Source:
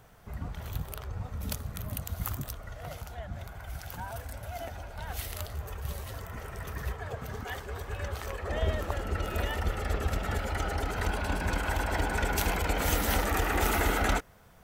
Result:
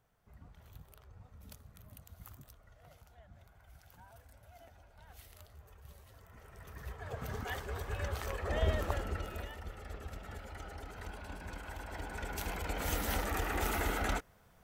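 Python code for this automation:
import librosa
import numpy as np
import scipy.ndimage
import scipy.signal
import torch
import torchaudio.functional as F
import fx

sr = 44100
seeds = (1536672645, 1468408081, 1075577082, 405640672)

y = fx.gain(x, sr, db=fx.line((6.12, -18.5), (6.9, -10.0), (7.24, -2.0), (8.93, -2.0), (9.57, -15.0), (11.79, -15.0), (12.97, -7.0)))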